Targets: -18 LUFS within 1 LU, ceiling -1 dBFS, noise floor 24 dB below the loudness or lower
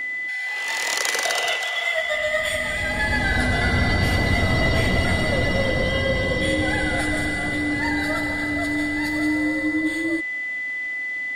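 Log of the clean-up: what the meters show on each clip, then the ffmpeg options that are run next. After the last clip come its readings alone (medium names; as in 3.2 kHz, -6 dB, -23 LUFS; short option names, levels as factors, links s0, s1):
steady tone 2 kHz; tone level -25 dBFS; loudness -22.0 LUFS; peak level -5.5 dBFS; loudness target -18.0 LUFS
-> -af "bandreject=f=2000:w=30"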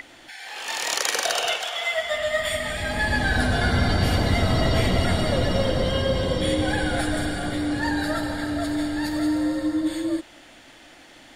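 steady tone not found; loudness -24.0 LUFS; peak level -6.0 dBFS; loudness target -18.0 LUFS
-> -af "volume=2,alimiter=limit=0.891:level=0:latency=1"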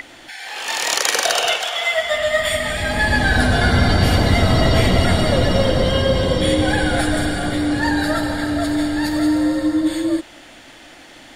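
loudness -18.0 LUFS; peak level -1.0 dBFS; noise floor -43 dBFS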